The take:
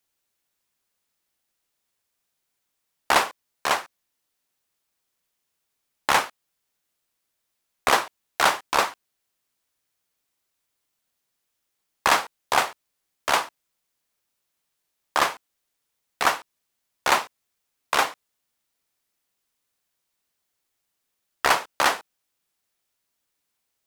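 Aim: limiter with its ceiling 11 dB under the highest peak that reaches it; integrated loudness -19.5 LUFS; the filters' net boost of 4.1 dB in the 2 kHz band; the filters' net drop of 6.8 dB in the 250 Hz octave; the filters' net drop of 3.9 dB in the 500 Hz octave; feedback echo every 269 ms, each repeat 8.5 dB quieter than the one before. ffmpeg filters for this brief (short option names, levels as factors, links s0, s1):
-af "equalizer=f=250:t=o:g=-8,equalizer=f=500:t=o:g=-4,equalizer=f=2000:t=o:g=5.5,alimiter=limit=0.224:level=0:latency=1,aecho=1:1:269|538|807|1076:0.376|0.143|0.0543|0.0206,volume=2.99"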